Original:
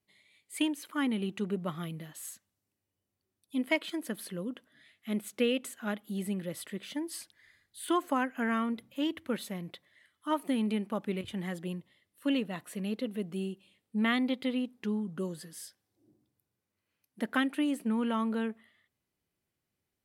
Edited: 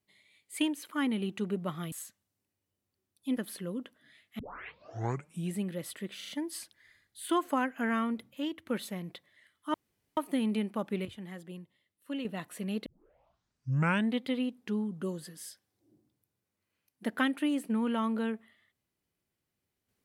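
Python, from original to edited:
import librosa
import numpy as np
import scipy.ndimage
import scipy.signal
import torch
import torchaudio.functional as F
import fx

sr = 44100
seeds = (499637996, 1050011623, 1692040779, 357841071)

y = fx.edit(x, sr, fx.cut(start_s=1.92, length_s=0.27),
    fx.cut(start_s=3.64, length_s=0.44),
    fx.tape_start(start_s=5.1, length_s=1.19),
    fx.stutter(start_s=6.88, slice_s=0.04, count=4),
    fx.fade_out_to(start_s=8.73, length_s=0.52, floor_db=-6.5),
    fx.insert_room_tone(at_s=10.33, length_s=0.43),
    fx.clip_gain(start_s=11.28, length_s=1.13, db=-7.5),
    fx.tape_start(start_s=13.02, length_s=1.37), tone=tone)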